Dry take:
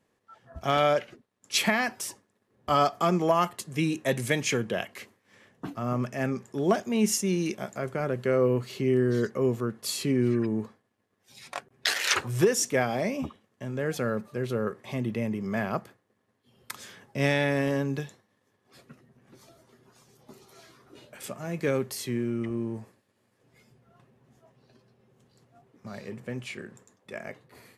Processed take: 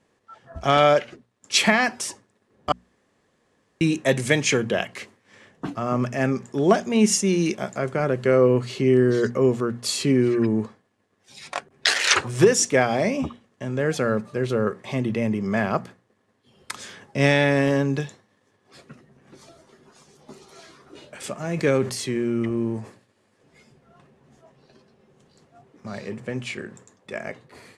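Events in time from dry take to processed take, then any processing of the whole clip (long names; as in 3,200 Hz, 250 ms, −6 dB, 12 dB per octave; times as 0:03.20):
0:02.72–0:03.81: fill with room tone
0:21.39–0:25.98: level that may fall only so fast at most 130 dB per second
whole clip: low-pass filter 9,600 Hz 24 dB per octave; mains-hum notches 60/120/180/240 Hz; level +6.5 dB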